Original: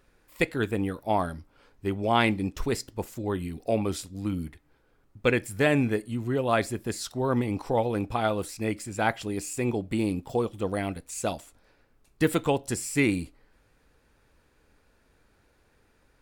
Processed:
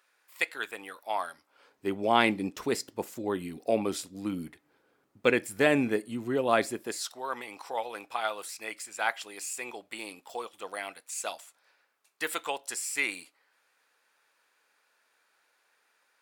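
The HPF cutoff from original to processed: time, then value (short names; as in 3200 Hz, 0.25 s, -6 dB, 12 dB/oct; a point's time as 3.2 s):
1.33 s 960 Hz
1.92 s 230 Hz
6.67 s 230 Hz
7.23 s 920 Hz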